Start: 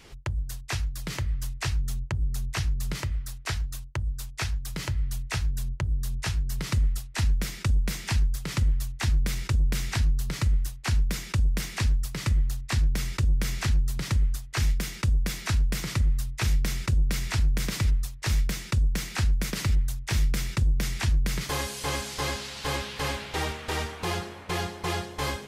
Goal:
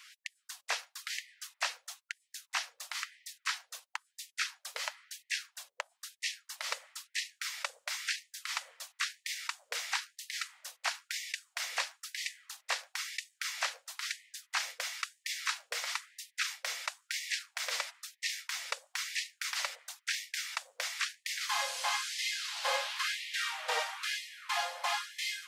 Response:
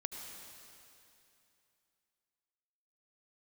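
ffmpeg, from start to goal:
-filter_complex "[0:a]acrossover=split=7800[link_01][link_02];[link_02]acompressor=threshold=-50dB:ratio=4:attack=1:release=60[link_03];[link_01][link_03]amix=inputs=2:normalize=0,afftfilt=real='re*gte(b*sr/1024,460*pow(1800/460,0.5+0.5*sin(2*PI*1*pts/sr)))':imag='im*gte(b*sr/1024,460*pow(1800/460,0.5+0.5*sin(2*PI*1*pts/sr)))':win_size=1024:overlap=0.75"

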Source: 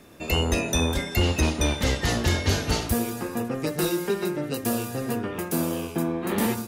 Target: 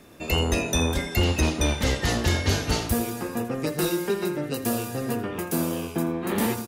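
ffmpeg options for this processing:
ffmpeg -i in.wav -af "aecho=1:1:83:0.15" out.wav

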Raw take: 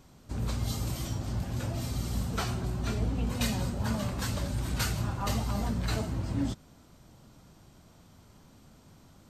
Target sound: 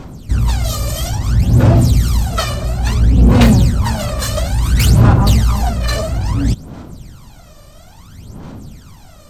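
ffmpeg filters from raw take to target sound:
ffmpeg -i in.wav -af "aeval=exprs='0.168*sin(PI/2*2.51*val(0)/0.168)':channel_layout=same,aphaser=in_gain=1:out_gain=1:delay=1.7:decay=0.78:speed=0.59:type=sinusoidal,volume=1dB" out.wav

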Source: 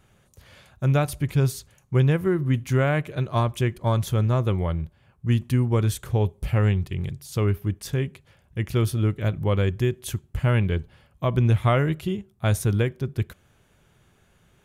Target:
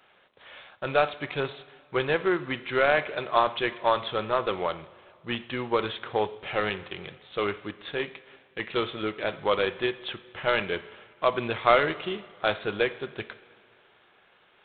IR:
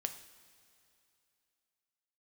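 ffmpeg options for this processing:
-filter_complex "[0:a]highpass=550,asplit=2[link_01][link_02];[1:a]atrim=start_sample=2205,asetrate=48510,aresample=44100[link_03];[link_02][link_03]afir=irnorm=-1:irlink=0,volume=2dB[link_04];[link_01][link_04]amix=inputs=2:normalize=0" -ar 8000 -c:a adpcm_g726 -b:a 24k

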